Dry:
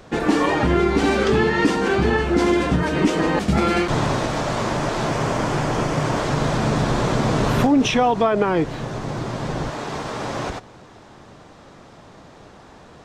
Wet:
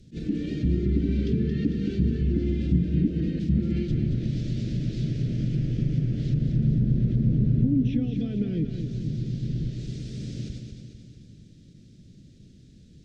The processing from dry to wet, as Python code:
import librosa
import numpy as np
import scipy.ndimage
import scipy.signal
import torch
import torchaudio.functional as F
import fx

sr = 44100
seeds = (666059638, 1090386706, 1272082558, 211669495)

y = scipy.signal.sosfilt(scipy.signal.cheby1(2, 1.0, [190.0, 4600.0], 'bandstop', fs=sr, output='sos'), x)
y = fx.env_lowpass_down(y, sr, base_hz=1100.0, full_db=-18.5)
y = fx.high_shelf(y, sr, hz=2900.0, db=-11.0)
y = fx.echo_feedback(y, sr, ms=224, feedback_pct=54, wet_db=-7)
y = fx.attack_slew(y, sr, db_per_s=290.0)
y = F.gain(torch.from_numpy(y), -1.0).numpy()